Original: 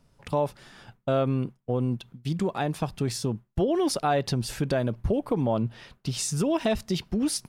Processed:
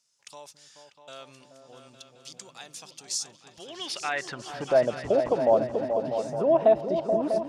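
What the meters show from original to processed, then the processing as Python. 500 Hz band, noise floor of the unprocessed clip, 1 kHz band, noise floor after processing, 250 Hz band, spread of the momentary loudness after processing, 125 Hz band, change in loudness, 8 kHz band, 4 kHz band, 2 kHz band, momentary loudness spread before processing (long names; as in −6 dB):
+3.5 dB, −66 dBFS, 0.0 dB, −59 dBFS, −7.5 dB, 22 LU, −15.0 dB, +2.0 dB, −3.0 dB, −2.5 dB, +1.0 dB, 6 LU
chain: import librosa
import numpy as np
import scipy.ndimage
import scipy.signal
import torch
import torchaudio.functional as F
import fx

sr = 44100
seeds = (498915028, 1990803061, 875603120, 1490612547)

y = fx.filter_sweep_bandpass(x, sr, from_hz=6500.0, to_hz=650.0, start_s=3.46, end_s=4.79, q=2.8)
y = fx.echo_opening(y, sr, ms=215, hz=200, octaves=2, feedback_pct=70, wet_db=-3)
y = y * librosa.db_to_amplitude(9.0)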